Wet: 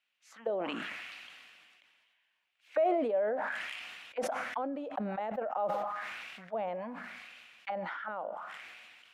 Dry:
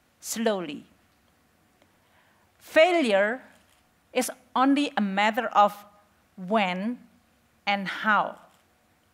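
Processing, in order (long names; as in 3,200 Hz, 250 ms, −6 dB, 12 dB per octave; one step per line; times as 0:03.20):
envelope filter 520–2,800 Hz, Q 3.1, down, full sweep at −21.5 dBFS
level that may fall only so fast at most 26 dB per second
level −6 dB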